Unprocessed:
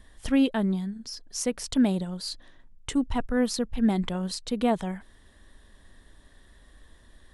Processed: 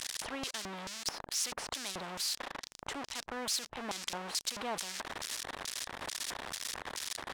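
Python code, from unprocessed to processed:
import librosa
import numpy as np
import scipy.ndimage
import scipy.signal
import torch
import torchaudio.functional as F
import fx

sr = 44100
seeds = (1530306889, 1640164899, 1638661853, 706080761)

y = x + 0.5 * 10.0 ** (-28.0 / 20.0) * np.sign(x)
y = fx.filter_lfo_bandpass(y, sr, shape='square', hz=2.3, low_hz=890.0, high_hz=5300.0, q=2.1)
y = fx.spectral_comp(y, sr, ratio=2.0)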